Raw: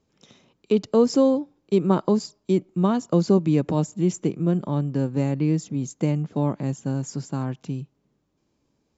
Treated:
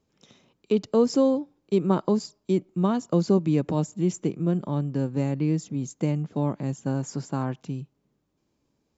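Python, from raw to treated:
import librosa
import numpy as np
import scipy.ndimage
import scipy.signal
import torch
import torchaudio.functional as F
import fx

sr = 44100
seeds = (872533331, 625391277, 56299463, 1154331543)

y = fx.peak_eq(x, sr, hz=900.0, db=5.5, octaves=2.9, at=(6.86, 7.61))
y = y * librosa.db_to_amplitude(-2.5)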